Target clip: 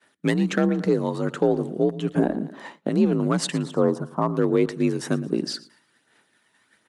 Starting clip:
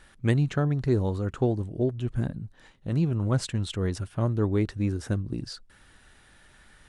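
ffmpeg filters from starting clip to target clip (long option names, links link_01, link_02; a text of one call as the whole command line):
ffmpeg -i in.wav -filter_complex "[0:a]asettb=1/sr,asplit=3[link_01][link_02][link_03];[link_01]atrim=end=3.634[link_04];[link_02]atrim=start=3.63:end=4.36,asetpts=PTS-STARTPTS,afade=type=in:duration=0.004:curve=qsin,afade=type=out:start_time=0.726:duration=0.004:curve=qsin,highshelf=frequency=1500:width_type=q:width=3:gain=-13.5[link_05];[link_03]atrim=start=4.356[link_06];[link_04][link_05]acrossfade=duration=0.004:curve1=hsin:curve2=qsin[link_07];[link_07][link_06]acrossfade=duration=0.004:curve1=qsin:curve2=hsin,asoftclip=type=hard:threshold=-16dB,asettb=1/sr,asplit=3[link_08][link_09][link_10];[link_08]atrim=end=0.684[link_11];[link_09]atrim=start=0.68:end=1.19,asetpts=PTS-STARTPTS,afade=type=in:duration=0.004:curve=qsin,afade=type=out:start_time=0.506:duration=0.004:curve=qsin,acompressor=threshold=-24dB:ratio=6[link_12];[link_10]atrim=start=1.186[link_13];[link_11][link_12]acrossfade=duration=0.004:curve1=hsin:curve2=qsin[link_14];[link_14][link_13]acrossfade=duration=0.004:curve1=qsin:curve2=hsin,highpass=200,aecho=1:1:114|228|342|456:0.112|0.0561|0.0281|0.014,aphaser=in_gain=1:out_gain=1:delay=1.1:decay=0.33:speed=1.3:type=sinusoidal,asettb=1/sr,asplit=3[link_15][link_16][link_17];[link_15]atrim=end=2.144[link_18];[link_16]atrim=start=2.14:end=2.89,asetpts=PTS-STARTPTS,afade=type=in:duration=0.004:curve=qsin,afade=type=out:start_time=0.746:duration=0.004:curve=qsin,equalizer=frequency=590:width=0.42:gain=12[link_19];[link_17]atrim=start=2.886[link_20];[link_18][link_19]acrossfade=duration=0.004:curve1=hsin:curve2=qsin[link_21];[link_21][link_20]acrossfade=duration=0.004:curve1=qsin:curve2=hsin,acontrast=67,agate=range=-33dB:threshold=-40dB:ratio=3:detection=peak,afreqshift=47,alimiter=limit=-11dB:level=0:latency=1:release=203,volume=1.5dB" out.wav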